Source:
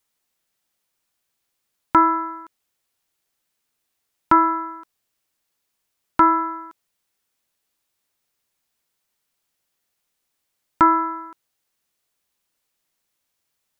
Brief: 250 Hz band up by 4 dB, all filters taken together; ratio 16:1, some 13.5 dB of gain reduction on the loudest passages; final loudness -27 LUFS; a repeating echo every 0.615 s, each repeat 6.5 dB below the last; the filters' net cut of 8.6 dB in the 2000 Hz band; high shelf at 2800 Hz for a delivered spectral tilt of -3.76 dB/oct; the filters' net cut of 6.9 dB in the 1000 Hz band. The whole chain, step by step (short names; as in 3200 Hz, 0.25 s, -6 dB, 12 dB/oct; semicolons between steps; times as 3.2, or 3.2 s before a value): bell 250 Hz +7 dB; bell 1000 Hz -5 dB; bell 2000 Hz -6 dB; high shelf 2800 Hz -9 dB; compressor 16:1, threshold -25 dBFS; feedback echo 0.615 s, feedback 47%, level -6.5 dB; gain +8.5 dB